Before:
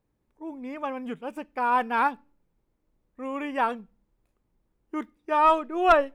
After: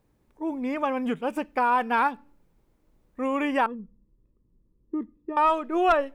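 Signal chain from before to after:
downward compressor 2.5 to 1, threshold −31 dBFS, peak gain reduction 12 dB
0:03.66–0:05.37: moving average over 59 samples
level +8 dB

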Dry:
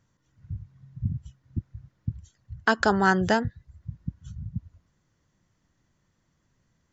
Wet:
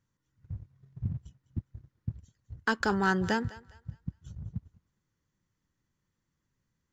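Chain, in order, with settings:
parametric band 670 Hz −9.5 dB 0.31 octaves
leveller curve on the samples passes 1
on a send: feedback echo with a high-pass in the loop 204 ms, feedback 32%, high-pass 510 Hz, level −17.5 dB
on the sum: level −8 dB

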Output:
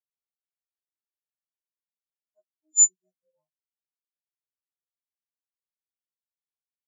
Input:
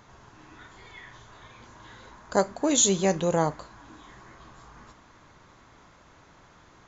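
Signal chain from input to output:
every partial snapped to a pitch grid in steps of 3 semitones
every bin expanded away from the loudest bin 4 to 1
level −7.5 dB

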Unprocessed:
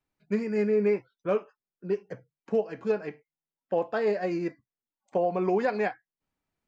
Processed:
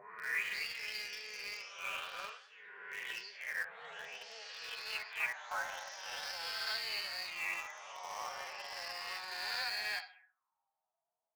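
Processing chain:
peak hold with a rise ahead of every peak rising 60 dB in 1.46 s
low-pass that shuts in the quiet parts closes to 890 Hz, open at −22 dBFS
gain on a spectral selection 0:03.25–0:03.47, 510–4,300 Hz +12 dB
on a send: flutter between parallel walls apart 6.8 metres, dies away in 0.2 s
on the sum: envelope filter 650–4,500 Hz, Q 5.8, up, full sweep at −22 dBFS
phase-vocoder stretch with locked phases 1.7×
drawn EQ curve 140 Hz 0 dB, 240 Hz −17 dB, 590 Hz −2 dB, 990 Hz +9 dB, 2,300 Hz +7 dB
delay with pitch and tempo change per echo 288 ms, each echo +2 semitones, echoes 3, each echo −6 dB
in parallel at −10 dB: bit reduction 7 bits
on the sum: parametric band 260 Hz −4.5 dB 0.21 octaves
level +3.5 dB

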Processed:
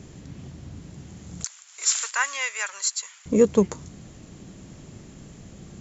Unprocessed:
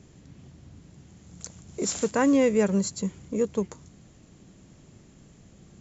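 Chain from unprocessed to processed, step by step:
0:01.44–0:03.26: high-pass filter 1,200 Hz 24 dB per octave
level +8.5 dB

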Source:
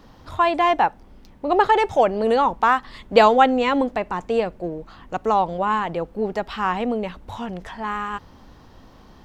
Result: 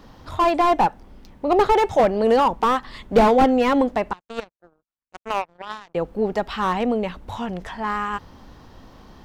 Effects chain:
0:04.13–0:05.95: power curve on the samples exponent 3
slew-rate limiting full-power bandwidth 140 Hz
level +2 dB

